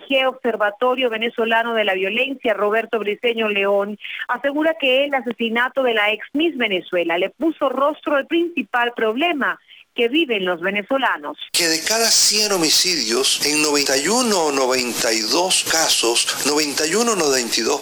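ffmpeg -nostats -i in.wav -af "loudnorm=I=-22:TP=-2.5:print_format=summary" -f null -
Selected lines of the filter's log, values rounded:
Input Integrated:    -17.6 LUFS
Input True Peak:      -4.5 dBTP
Input LRA:             4.3 LU
Input Threshold:     -27.7 LUFS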